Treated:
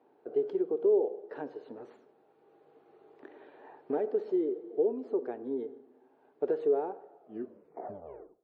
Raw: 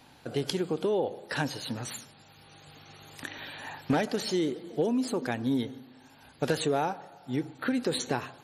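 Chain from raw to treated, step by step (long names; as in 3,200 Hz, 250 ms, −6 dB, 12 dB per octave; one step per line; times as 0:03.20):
turntable brake at the end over 1.28 s
four-pole ladder band-pass 450 Hz, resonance 65%
notch filter 530 Hz, Q 12
on a send: convolution reverb RT60 0.60 s, pre-delay 43 ms, DRR 19 dB
on the sum: level +5.5 dB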